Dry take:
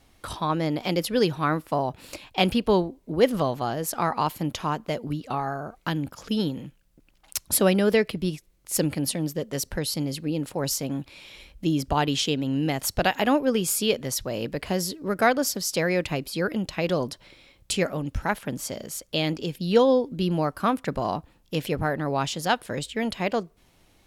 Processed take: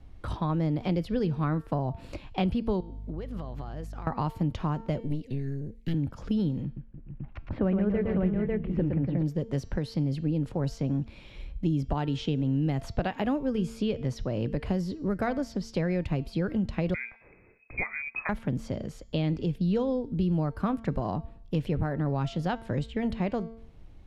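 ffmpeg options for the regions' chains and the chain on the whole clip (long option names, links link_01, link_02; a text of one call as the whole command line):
ffmpeg -i in.wav -filter_complex "[0:a]asettb=1/sr,asplit=3[link_01][link_02][link_03];[link_01]atrim=end=2.804[link_04];[link_02]atrim=start=2.8:end=4.07,asetpts=PTS-STARTPTS,afade=type=in:duration=0.004:curve=qsin,afade=type=out:start_time=1.266:duration=0.004:curve=qsin,tiltshelf=frequency=640:gain=-4.5,acompressor=threshold=-37dB:ratio=10:attack=3.2:release=140:knee=1:detection=peak,aeval=exprs='val(0)+0.00316*(sin(2*PI*50*n/s)+sin(2*PI*2*50*n/s)/2+sin(2*PI*3*50*n/s)/3+sin(2*PI*4*50*n/s)/4+sin(2*PI*5*50*n/s)/5)':channel_layout=same[link_05];[link_03]atrim=start=4.066[link_06];[link_04][link_05]acrossfade=duration=0.004:curve1=hsin:curve2=qsin[link_07];[link_07][link_06]acrossfade=duration=0.004:curve1=qsin:curve2=hsin,asettb=1/sr,asplit=3[link_08][link_09][link_10];[link_08]atrim=end=5.004[link_11];[link_09]atrim=start=5:end=5.94,asetpts=PTS-STARTPTS,afade=type=in:duration=0.004:curve=qsin,afade=type=out:start_time=0.936:duration=0.004:curve=qsin,asuperstop=centerf=950:order=20:qfactor=0.78,highshelf=frequency=8500:gain=11.5,aeval=exprs='(tanh(15.8*val(0)+0.7)-tanh(0.7))/15.8':channel_layout=same[link_12];[link_10]atrim=start=5.936[link_13];[link_11][link_12]acrossfade=duration=0.004:curve1=hsin:curve2=qsin[link_14];[link_14][link_13]acrossfade=duration=0.004:curve1=qsin:curve2=hsin,asettb=1/sr,asplit=3[link_15][link_16][link_17];[link_15]atrim=end=6.654[link_18];[link_16]atrim=start=6.65:end=9.23,asetpts=PTS-STARTPTS,afade=type=in:duration=0.004:curve=qsin,afade=type=out:start_time=2.576:duration=0.004:curve=qsin,lowpass=frequency=2300:width=0.5412,lowpass=frequency=2300:width=1.3066,aecho=1:1:113|287|411|446|447|549:0.562|0.251|0.15|0.316|0.133|0.668,atrim=end_sample=113778[link_19];[link_17]atrim=start=9.226[link_20];[link_18][link_19]acrossfade=duration=0.004:curve1=hsin:curve2=qsin[link_21];[link_21][link_20]acrossfade=duration=0.004:curve1=qsin:curve2=hsin,asettb=1/sr,asplit=3[link_22][link_23][link_24];[link_22]atrim=end=16.944[link_25];[link_23]atrim=start=16.94:end=18.29,asetpts=PTS-STARTPTS,afade=type=in:duration=0.004:curve=qsin,afade=type=out:start_time=1.346:duration=0.004:curve=qsin,deesser=0.55,lowpass=frequency=2200:width_type=q:width=0.5098,lowpass=frequency=2200:width_type=q:width=0.6013,lowpass=frequency=2200:width_type=q:width=0.9,lowpass=frequency=2200:width_type=q:width=2.563,afreqshift=-2600[link_26];[link_24]atrim=start=18.286[link_27];[link_25][link_26]acrossfade=duration=0.004:curve1=hsin:curve2=qsin[link_28];[link_28][link_27]acrossfade=duration=0.004:curve1=qsin:curve2=hsin,aemphasis=mode=reproduction:type=riaa,bandreject=frequency=226.2:width_type=h:width=4,bandreject=frequency=452.4:width_type=h:width=4,bandreject=frequency=678.6:width_type=h:width=4,bandreject=frequency=904.8:width_type=h:width=4,bandreject=frequency=1131:width_type=h:width=4,bandreject=frequency=1357.2:width_type=h:width=4,bandreject=frequency=1583.4:width_type=h:width=4,bandreject=frequency=1809.6:width_type=h:width=4,bandreject=frequency=2035.8:width_type=h:width=4,bandreject=frequency=2262:width_type=h:width=4,bandreject=frequency=2488.2:width_type=h:width=4,bandreject=frequency=2714.4:width_type=h:width=4,bandreject=frequency=2940.6:width_type=h:width=4,bandreject=frequency=3166.8:width_type=h:width=4,bandreject=frequency=3393:width_type=h:width=4,bandreject=frequency=3619.2:width_type=h:width=4,bandreject=frequency=3845.4:width_type=h:width=4,bandreject=frequency=4071.6:width_type=h:width=4,bandreject=frequency=4297.8:width_type=h:width=4,bandreject=frequency=4524:width_type=h:width=4,bandreject=frequency=4750.2:width_type=h:width=4,bandreject=frequency=4976.4:width_type=h:width=4,bandreject=frequency=5202.6:width_type=h:width=4,bandreject=frequency=5428.8:width_type=h:width=4,bandreject=frequency=5655:width_type=h:width=4,bandreject=frequency=5881.2:width_type=h:width=4,bandreject=frequency=6107.4:width_type=h:width=4,bandreject=frequency=6333.6:width_type=h:width=4,bandreject=frequency=6559.8:width_type=h:width=4,bandreject=frequency=6786:width_type=h:width=4,bandreject=frequency=7012.2:width_type=h:width=4,bandreject=frequency=7238.4:width_type=h:width=4,bandreject=frequency=7464.6:width_type=h:width=4,acrossover=split=130|5400[link_29][link_30][link_31];[link_29]acompressor=threshold=-30dB:ratio=4[link_32];[link_30]acompressor=threshold=-24dB:ratio=4[link_33];[link_31]acompressor=threshold=-57dB:ratio=4[link_34];[link_32][link_33][link_34]amix=inputs=3:normalize=0,volume=-3dB" out.wav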